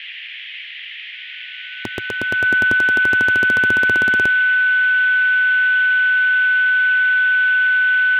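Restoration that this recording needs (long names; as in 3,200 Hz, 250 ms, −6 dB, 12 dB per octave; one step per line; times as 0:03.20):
notch filter 1,500 Hz, Q 30
noise reduction from a noise print 30 dB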